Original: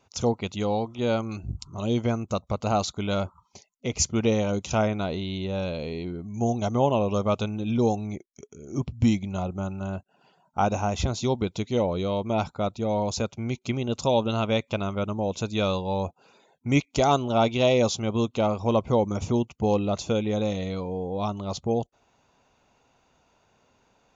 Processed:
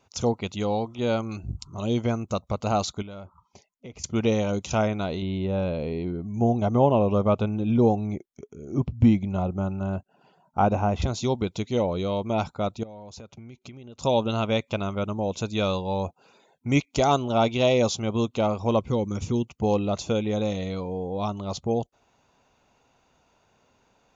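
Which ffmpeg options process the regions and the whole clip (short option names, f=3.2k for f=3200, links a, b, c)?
-filter_complex "[0:a]asettb=1/sr,asplit=3[a][b][c];[a]atrim=end=3.024[d];[b]atrim=start=3.02:end=4.04,asetpts=PTS-STARTPTS,afade=t=in:d=0.004:c=qsin,afade=t=out:st=1.016:d=0.004:c=qsin,bandreject=f=4.2k:w=28,acompressor=threshold=-41dB:ratio=3:attack=3.2:release=140:knee=1:detection=peak,highshelf=f=3.9k:g=-10[e];[c]atrim=start=4.036[f];[d][e]acrossfade=d=0.004:c1=hsin:c2=qsin[g];[g][f]acrossfade=d=0.004:c1=qsin:c2=hsin,asettb=1/sr,asplit=3[h][i][j];[h]atrim=end=5.224[k];[i]atrim=start=5.22:end=11.02,asetpts=PTS-STARTPTS,afade=t=in:d=0.004:c=qsin,afade=t=out:st=5.796:d=0.004:c=qsin,acrossover=split=3500[l][m];[m]acompressor=threshold=-56dB:ratio=4:attack=1:release=60[n];[l][n]amix=inputs=2:normalize=0,tiltshelf=f=1.5k:g=3.5[o];[j]atrim=start=11.016[p];[k][o]acrossfade=d=0.004:c1=hsin:c2=qsin[q];[q][p]acrossfade=d=0.004:c1=qsin:c2=hsin,asettb=1/sr,asplit=3[r][s][t];[r]atrim=end=12.834[u];[s]atrim=start=12.83:end=14.01,asetpts=PTS-STARTPTS,afade=t=in:d=0.004:c=qsin,afade=t=out:st=1.176:d=0.004:c=qsin,highshelf=f=5.7k:g=-8,acompressor=threshold=-39dB:ratio=12:attack=3.2:release=140:knee=1:detection=peak[v];[t]atrim=start=14.006[w];[u][v]acrossfade=d=0.004:c1=hsin:c2=qsin[x];[x][w]acrossfade=d=0.004:c1=qsin:c2=hsin,asettb=1/sr,asplit=3[y][z][aa];[y]atrim=end=18.794[ab];[z]atrim=start=18.79:end=19.47,asetpts=PTS-STARTPTS,afade=t=in:d=0.004:c=qsin,afade=t=out:st=0.676:d=0.004:c=qsin,equalizer=f=790:t=o:w=1.2:g=-8.5,bandreject=f=630:w=7.1[ac];[aa]atrim=start=19.466[ad];[ab][ac]acrossfade=d=0.004:c1=hsin:c2=qsin[ae];[ae][ad]acrossfade=d=0.004:c1=qsin:c2=hsin"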